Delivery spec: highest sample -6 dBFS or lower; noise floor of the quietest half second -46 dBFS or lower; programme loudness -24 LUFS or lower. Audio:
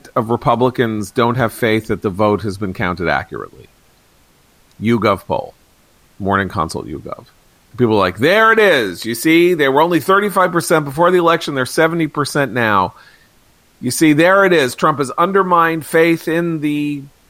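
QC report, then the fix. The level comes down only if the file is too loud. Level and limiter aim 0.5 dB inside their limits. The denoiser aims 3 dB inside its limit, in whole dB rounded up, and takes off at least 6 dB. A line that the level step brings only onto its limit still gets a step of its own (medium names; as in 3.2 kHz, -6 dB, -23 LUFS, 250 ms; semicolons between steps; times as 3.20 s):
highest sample -2.0 dBFS: fail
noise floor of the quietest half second -52 dBFS: pass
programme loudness -14.5 LUFS: fail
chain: trim -10 dB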